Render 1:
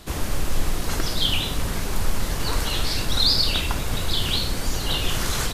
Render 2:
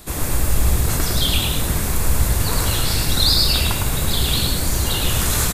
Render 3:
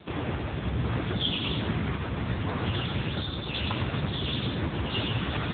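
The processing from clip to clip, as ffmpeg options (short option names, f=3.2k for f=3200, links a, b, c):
-filter_complex "[0:a]bandreject=f=3k:w=15,asplit=6[a][b][c][d][e][f];[b]adelay=107,afreqshift=50,volume=-3dB[g];[c]adelay=214,afreqshift=100,volume=-11.9dB[h];[d]adelay=321,afreqshift=150,volume=-20.7dB[i];[e]adelay=428,afreqshift=200,volume=-29.6dB[j];[f]adelay=535,afreqshift=250,volume=-38.5dB[k];[a][g][h][i][j][k]amix=inputs=6:normalize=0,aexciter=amount=3:drive=3.5:freq=7.4k,volume=1.5dB"
-af "alimiter=limit=-10.5dB:level=0:latency=1:release=101" -ar 8000 -c:a libopencore_amrnb -b:a 6700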